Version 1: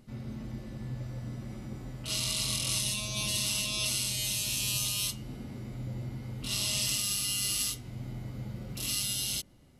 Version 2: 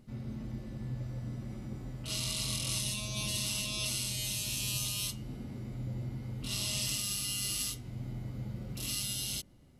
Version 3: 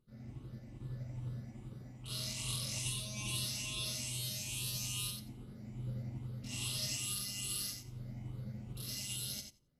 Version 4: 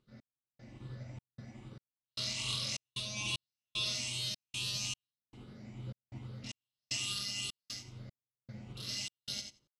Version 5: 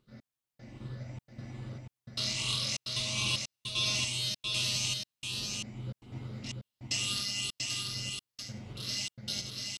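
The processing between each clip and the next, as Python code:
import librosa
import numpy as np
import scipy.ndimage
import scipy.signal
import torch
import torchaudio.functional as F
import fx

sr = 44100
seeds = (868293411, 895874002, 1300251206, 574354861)

y1 = fx.low_shelf(x, sr, hz=460.0, db=4.0)
y1 = y1 * 10.0 ** (-4.0 / 20.0)
y2 = fx.spec_ripple(y1, sr, per_octave=0.64, drift_hz=2.4, depth_db=11)
y2 = fx.echo_feedback(y2, sr, ms=89, feedback_pct=19, wet_db=-3)
y2 = fx.upward_expand(y2, sr, threshold_db=-54.0, expansion=1.5)
y2 = y2 * 10.0 ** (-7.0 / 20.0)
y3 = fx.tilt_eq(y2, sr, slope=2.5)
y3 = fx.step_gate(y3, sr, bpm=76, pattern='x..xxx.x', floor_db=-60.0, edge_ms=4.5)
y3 = fx.air_absorb(y3, sr, metres=130.0)
y3 = y3 * 10.0 ** (5.0 / 20.0)
y4 = y3 + 10.0 ** (-3.5 / 20.0) * np.pad(y3, (int(689 * sr / 1000.0), 0))[:len(y3)]
y4 = y4 * 10.0 ** (4.0 / 20.0)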